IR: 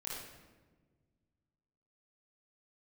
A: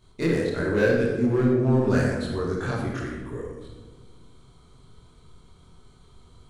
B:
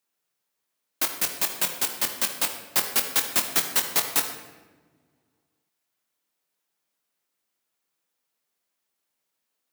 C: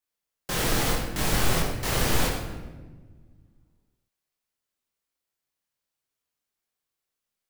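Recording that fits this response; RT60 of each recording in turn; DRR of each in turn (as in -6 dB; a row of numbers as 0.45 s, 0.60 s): A; 1.4 s, no single decay rate, 1.4 s; -7.5 dB, 4.0 dB, -3.5 dB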